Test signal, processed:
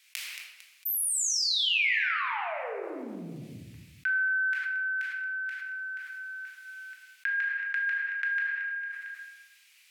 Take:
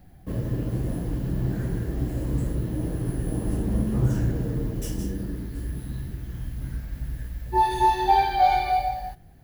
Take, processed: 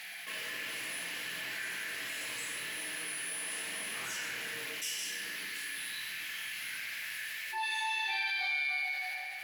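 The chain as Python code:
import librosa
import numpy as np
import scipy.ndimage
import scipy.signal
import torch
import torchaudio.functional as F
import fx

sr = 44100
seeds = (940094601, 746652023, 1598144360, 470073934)

p1 = fx.bandpass_q(x, sr, hz=2300.0, q=3.0)
p2 = np.diff(p1, prepend=0.0)
p3 = p2 + fx.echo_feedback(p2, sr, ms=226, feedback_pct=37, wet_db=-22.0, dry=0)
p4 = fx.room_shoebox(p3, sr, seeds[0], volume_m3=510.0, walls='mixed', distance_m=1.5)
p5 = fx.env_flatten(p4, sr, amount_pct=70)
y = F.gain(torch.from_numpy(p5), 8.5).numpy()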